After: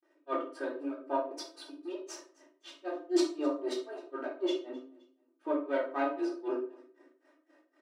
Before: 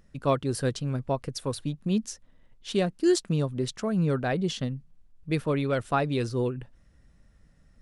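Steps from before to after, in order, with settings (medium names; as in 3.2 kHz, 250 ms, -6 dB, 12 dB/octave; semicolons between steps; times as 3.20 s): partial rectifier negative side -7 dB; low-pass 1.3 kHz 6 dB/octave; comb 3.2 ms, depth 98%; reverse; compression 6:1, threshold -35 dBFS, peak gain reduction 19 dB; reverse; granulator 194 ms, grains 3.9 per s, spray 36 ms, pitch spread up and down by 0 st; brick-wall FIR high-pass 280 Hz; feedback delay 261 ms, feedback 36%, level -23 dB; simulated room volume 390 m³, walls furnished, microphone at 3.7 m; trim +5.5 dB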